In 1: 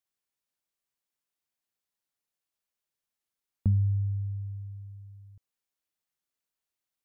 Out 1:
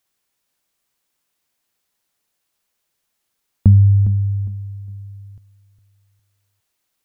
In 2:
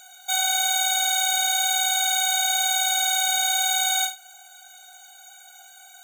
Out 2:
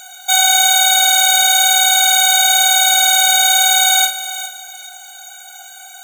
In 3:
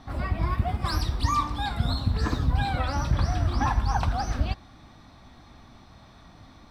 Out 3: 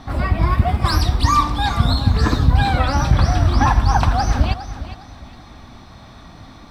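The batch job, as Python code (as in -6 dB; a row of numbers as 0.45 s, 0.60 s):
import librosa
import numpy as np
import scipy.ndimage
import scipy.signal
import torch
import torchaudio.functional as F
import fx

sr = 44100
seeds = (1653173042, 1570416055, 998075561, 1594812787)

y = fx.echo_feedback(x, sr, ms=408, feedback_pct=27, wet_db=-13.0)
y = y * 10.0 ** (-1.5 / 20.0) / np.max(np.abs(y))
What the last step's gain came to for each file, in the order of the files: +14.5 dB, +11.0 dB, +9.5 dB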